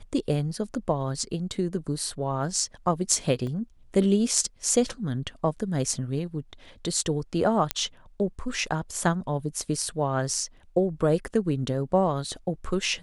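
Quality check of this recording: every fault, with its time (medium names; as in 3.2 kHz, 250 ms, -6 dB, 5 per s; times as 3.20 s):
3.47 s: dropout 2.3 ms
7.71 s: pop -6 dBFS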